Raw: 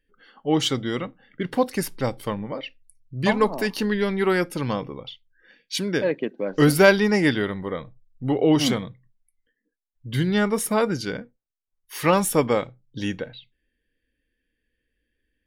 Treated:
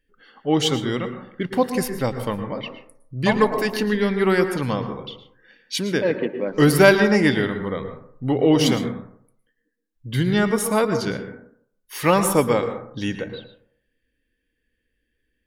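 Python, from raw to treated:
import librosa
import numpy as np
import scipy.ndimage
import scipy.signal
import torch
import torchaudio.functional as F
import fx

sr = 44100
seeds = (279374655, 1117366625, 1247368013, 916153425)

y = fx.rev_plate(x, sr, seeds[0], rt60_s=0.63, hf_ratio=0.3, predelay_ms=100, drr_db=8.0)
y = y * librosa.db_to_amplitude(1.5)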